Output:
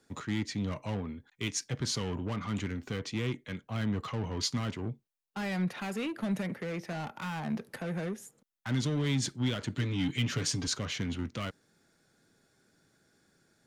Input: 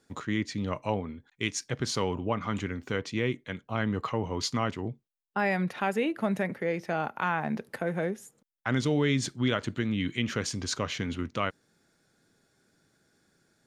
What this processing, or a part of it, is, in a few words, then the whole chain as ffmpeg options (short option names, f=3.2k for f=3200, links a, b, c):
one-band saturation: -filter_complex "[0:a]asettb=1/sr,asplit=3[a][b][c];[a]atrim=end=9.764[d];[b]atrim=start=9.76:end=10.67,asetpts=PTS-STARTPTS,afade=t=in:d=0.004:c=qsin,afade=t=out:st=0.906:d=0.004:c=qsin,aecho=1:1:7:0.91,atrim=end_sample=40131[e];[c]atrim=start=10.666[f];[d][e]acrossfade=d=0.004:c1=hsin:c2=qsin[g];[g][f]acrossfade=d=0.004:c1=qsin:c2=hsin,acrossover=split=240|2900[h][i][j];[i]asoftclip=type=tanh:threshold=-37.5dB[k];[h][k][j]amix=inputs=3:normalize=0"